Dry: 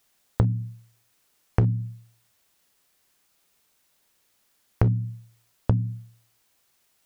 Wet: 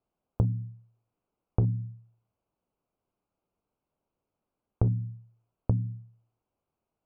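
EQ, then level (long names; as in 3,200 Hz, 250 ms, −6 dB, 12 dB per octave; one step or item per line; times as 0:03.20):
moving average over 24 samples
high-frequency loss of the air 320 metres
−4.0 dB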